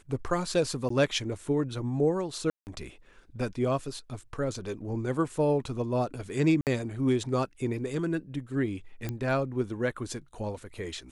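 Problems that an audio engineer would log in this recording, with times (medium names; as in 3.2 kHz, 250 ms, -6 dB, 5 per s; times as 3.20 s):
0.89–0.90 s: dropout 14 ms
2.50–2.67 s: dropout 169 ms
6.61–6.67 s: dropout 58 ms
9.09 s: pop -19 dBFS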